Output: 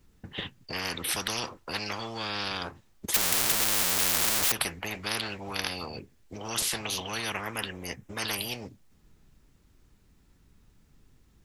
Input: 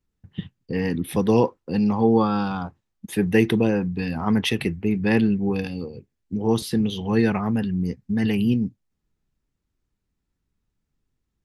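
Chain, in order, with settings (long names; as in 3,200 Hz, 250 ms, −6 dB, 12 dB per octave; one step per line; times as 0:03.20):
0:03.14–0:04.52: sign of each sample alone
0:07.17–0:08.21: parametric band 4,500 Hz −10.5 dB 0.41 octaves
every bin compressed towards the loudest bin 10 to 1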